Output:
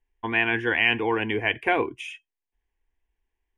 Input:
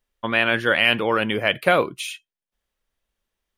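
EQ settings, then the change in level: air absorption 110 m; low shelf 140 Hz +6 dB; fixed phaser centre 860 Hz, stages 8; 0.0 dB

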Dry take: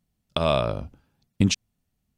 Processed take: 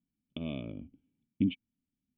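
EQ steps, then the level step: vocal tract filter i; air absorption 120 m; low shelf 150 Hz -7.5 dB; +1.5 dB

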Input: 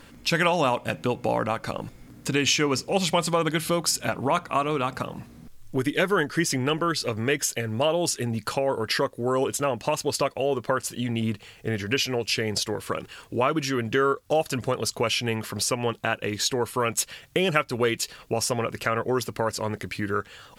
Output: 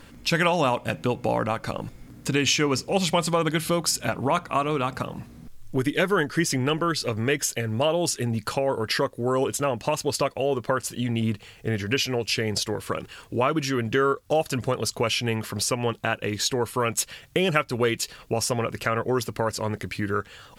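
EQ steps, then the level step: low shelf 150 Hz +4 dB; 0.0 dB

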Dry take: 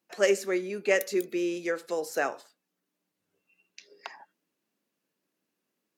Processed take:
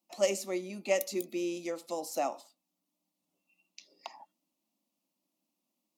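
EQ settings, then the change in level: fixed phaser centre 430 Hz, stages 6; 0.0 dB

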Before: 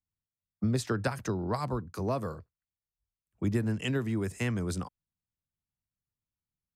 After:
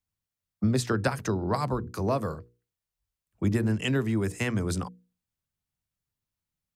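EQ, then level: notches 60/120/180/240/300/360/420/480 Hz; +4.5 dB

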